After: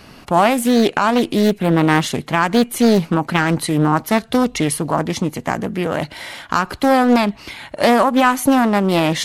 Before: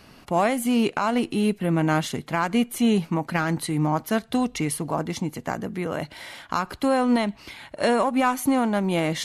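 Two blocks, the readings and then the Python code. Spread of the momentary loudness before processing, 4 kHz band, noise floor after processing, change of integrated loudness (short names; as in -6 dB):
8 LU, +8.5 dB, -43 dBFS, +7.5 dB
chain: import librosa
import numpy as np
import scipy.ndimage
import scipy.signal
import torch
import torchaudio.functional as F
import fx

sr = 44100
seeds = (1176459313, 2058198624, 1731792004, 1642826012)

y = fx.doppler_dist(x, sr, depth_ms=0.46)
y = y * 10.0 ** (8.0 / 20.0)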